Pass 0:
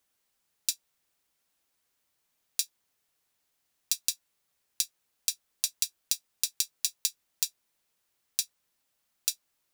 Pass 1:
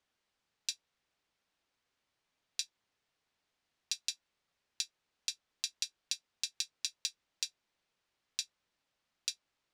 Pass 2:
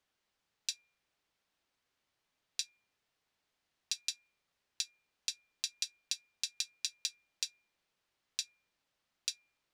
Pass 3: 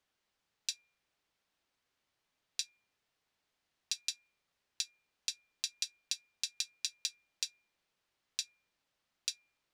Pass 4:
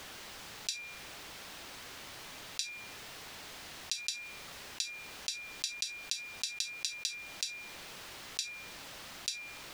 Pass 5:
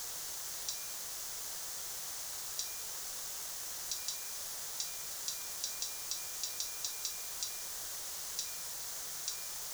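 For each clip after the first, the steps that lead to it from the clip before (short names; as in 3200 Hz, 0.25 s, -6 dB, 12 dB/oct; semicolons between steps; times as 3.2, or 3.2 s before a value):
LPF 4600 Hz 12 dB/oct; gain -1 dB
de-hum 240.1 Hz, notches 10
nothing audible
fast leveller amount 70%
requantised 6-bit, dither triangular; fifteen-band EQ 100 Hz -4 dB, 250 Hz -12 dB, 2500 Hz -7 dB, 6300 Hz +8 dB; gain -8 dB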